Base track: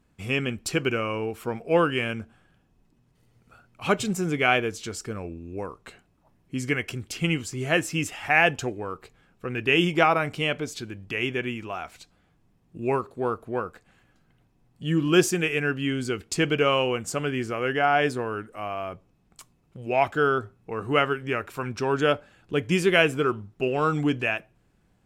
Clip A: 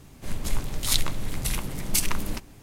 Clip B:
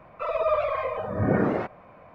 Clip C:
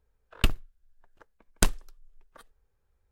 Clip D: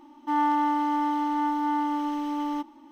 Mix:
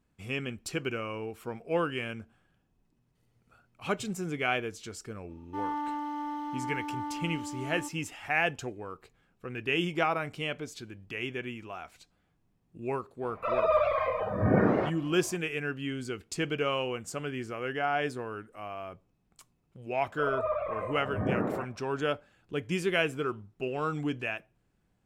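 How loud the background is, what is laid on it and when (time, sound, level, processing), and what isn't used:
base track −8 dB
0:05.26: mix in D −10 dB, fades 0.05 s
0:13.23: mix in B −1 dB
0:19.98: mix in B −7 dB + low-pass filter 1,900 Hz
not used: A, C

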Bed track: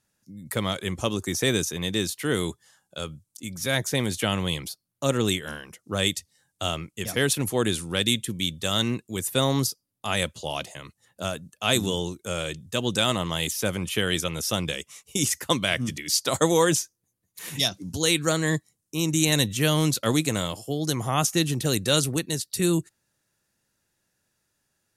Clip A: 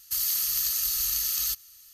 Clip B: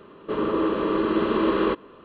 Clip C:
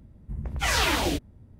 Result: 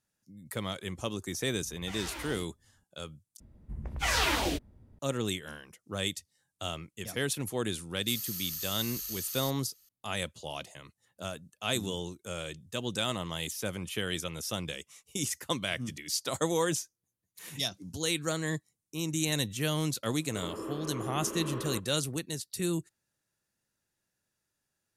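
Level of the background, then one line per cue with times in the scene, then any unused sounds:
bed track −8.5 dB
0:01.25: mix in C −14.5 dB + micro pitch shift up and down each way 35 cents
0:03.40: overwrite with C −3.5 dB + parametric band 120 Hz −4 dB 1.9 octaves
0:07.96: mix in A −11.5 dB
0:20.05: mix in B −16 dB

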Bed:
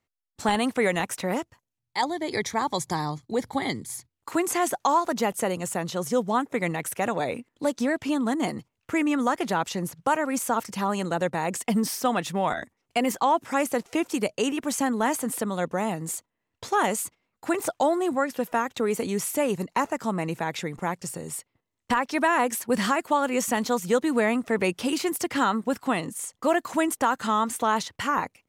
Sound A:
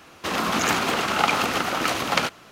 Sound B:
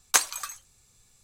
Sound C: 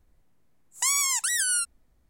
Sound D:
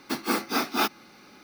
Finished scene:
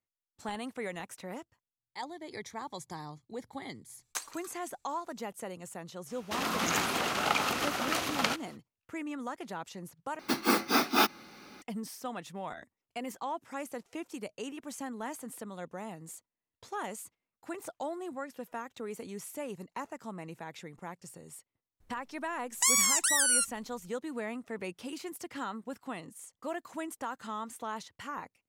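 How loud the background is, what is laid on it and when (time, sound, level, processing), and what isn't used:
bed −14.5 dB
0:04.01: mix in B −16.5 dB
0:06.07: mix in A −8.5 dB, fades 0.05 s + high-shelf EQ 4,900 Hz +5 dB
0:10.19: overwrite with D
0:21.80: mix in C −1 dB

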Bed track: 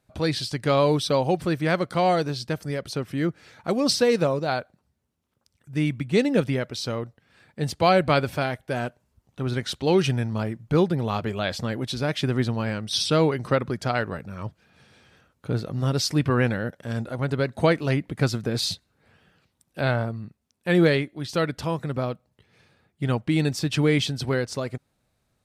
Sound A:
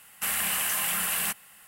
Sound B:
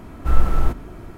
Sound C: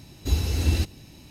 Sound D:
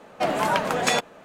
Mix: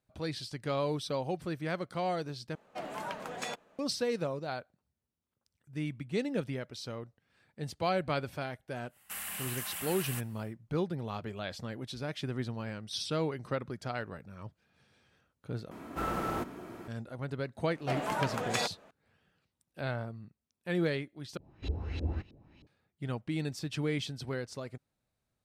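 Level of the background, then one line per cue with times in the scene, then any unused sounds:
bed track −12 dB
0:02.55: overwrite with D −16.5 dB
0:08.88: mix in A −12 dB, fades 0.10 s
0:15.71: overwrite with B −3.5 dB + high-pass filter 200 Hz
0:17.67: mix in D −10.5 dB
0:21.37: overwrite with C −12 dB + auto-filter low-pass saw up 3.2 Hz 400–3,600 Hz

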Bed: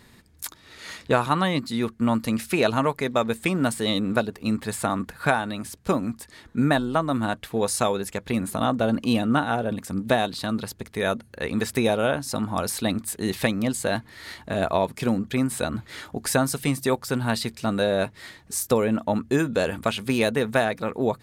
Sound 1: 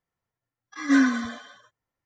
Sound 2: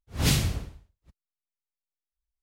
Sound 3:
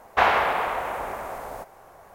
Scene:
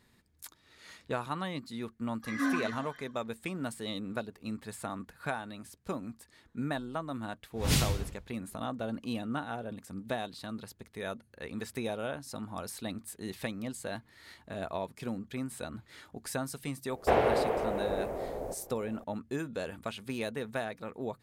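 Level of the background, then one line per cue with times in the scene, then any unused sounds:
bed −13.5 dB
0:01.50: mix in 1 −12.5 dB + auto-filter bell 3 Hz 750–2,200 Hz +11 dB
0:07.45: mix in 2 −4 dB
0:16.90: mix in 3 −12 dB + low shelf with overshoot 710 Hz +14 dB, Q 1.5

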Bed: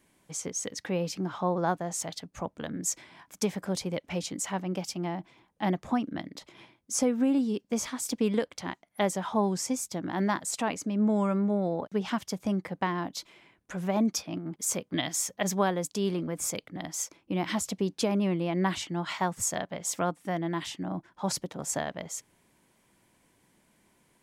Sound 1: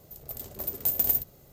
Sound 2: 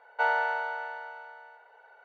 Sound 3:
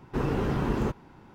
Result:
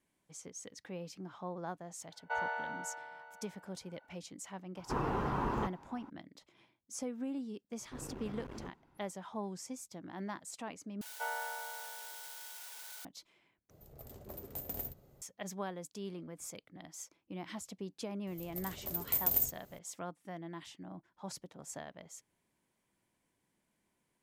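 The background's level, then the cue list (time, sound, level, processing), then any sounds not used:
bed −14 dB
0:02.11: mix in 2 −10 dB
0:04.76: mix in 3 −10 dB + parametric band 1,000 Hz +12 dB 1.2 octaves
0:07.78: mix in 3 −16 dB + saturating transformer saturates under 390 Hz
0:11.01: overwrite with 2 −13 dB + spike at every zero crossing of −23 dBFS
0:13.70: overwrite with 1 −6 dB + high-shelf EQ 2,500 Hz −11.5 dB
0:18.27: mix in 1 −5.5 dB

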